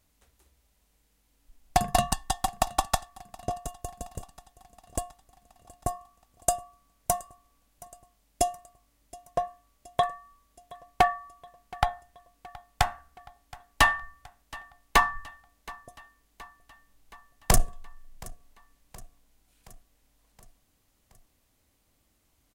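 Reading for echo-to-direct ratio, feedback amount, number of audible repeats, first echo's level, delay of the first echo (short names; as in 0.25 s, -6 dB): -19.5 dB, 59%, 3, -21.5 dB, 0.722 s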